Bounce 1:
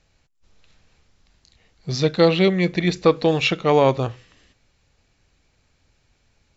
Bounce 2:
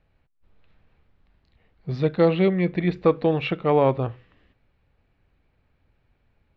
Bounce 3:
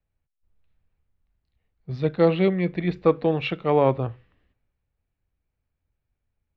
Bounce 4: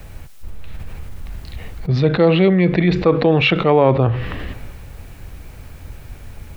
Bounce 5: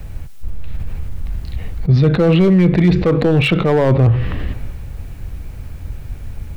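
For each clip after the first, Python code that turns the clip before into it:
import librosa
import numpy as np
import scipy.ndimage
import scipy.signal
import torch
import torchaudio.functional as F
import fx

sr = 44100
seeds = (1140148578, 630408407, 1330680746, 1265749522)

y1 = fx.air_absorb(x, sr, metres=460.0)
y1 = y1 * 10.0 ** (-1.5 / 20.0)
y2 = fx.band_widen(y1, sr, depth_pct=40)
y2 = y2 * 10.0 ** (-1.0 / 20.0)
y3 = fx.env_flatten(y2, sr, amount_pct=70)
y3 = y3 * 10.0 ** (3.0 / 20.0)
y4 = np.clip(y3, -10.0 ** (-9.5 / 20.0), 10.0 ** (-9.5 / 20.0))
y4 = fx.low_shelf(y4, sr, hz=250.0, db=9.5)
y4 = y4 * 10.0 ** (-1.5 / 20.0)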